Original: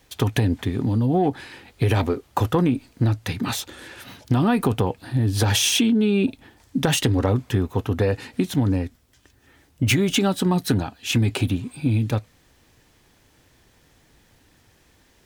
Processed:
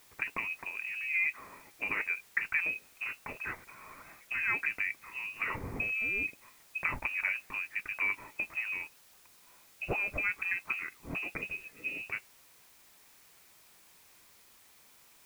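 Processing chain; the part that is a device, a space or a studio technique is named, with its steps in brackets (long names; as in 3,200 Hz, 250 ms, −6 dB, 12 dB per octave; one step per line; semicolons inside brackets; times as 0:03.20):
scrambled radio voice (band-pass filter 370–2,800 Hz; voice inversion scrambler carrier 2,800 Hz; white noise bed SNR 23 dB)
level −7.5 dB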